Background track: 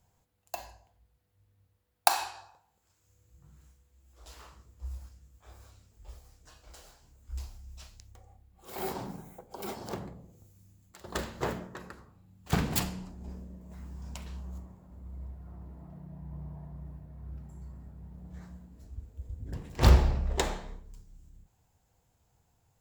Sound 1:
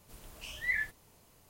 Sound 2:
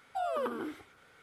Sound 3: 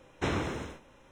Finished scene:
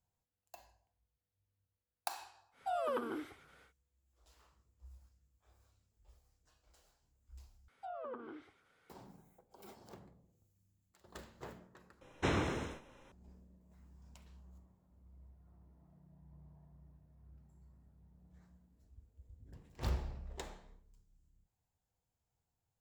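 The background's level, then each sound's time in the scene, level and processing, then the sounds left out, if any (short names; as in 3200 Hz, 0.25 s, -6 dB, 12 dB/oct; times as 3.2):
background track -17 dB
2.51 add 2 -3 dB, fades 0.10 s
7.68 replace with 2 -11.5 dB + treble ducked by the level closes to 1500 Hz, closed at -29.5 dBFS
12.01 replace with 3 -2.5 dB
not used: 1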